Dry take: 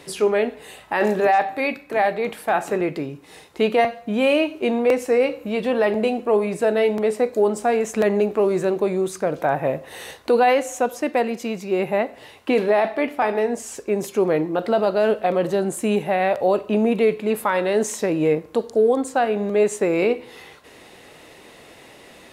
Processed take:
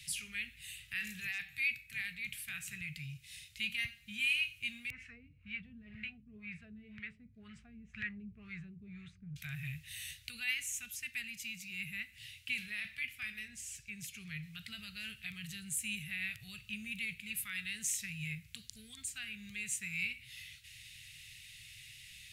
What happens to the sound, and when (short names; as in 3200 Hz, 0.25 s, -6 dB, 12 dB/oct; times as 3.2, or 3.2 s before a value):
4.9–9.36 LFO low-pass sine 2 Hz 280–1800 Hz
13.48–14.43 high shelf 5200 Hz -8 dB
whole clip: elliptic band-stop 120–2400 Hz, stop band 50 dB; dynamic EQ 4400 Hz, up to -6 dB, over -48 dBFS, Q 0.92; gain -2 dB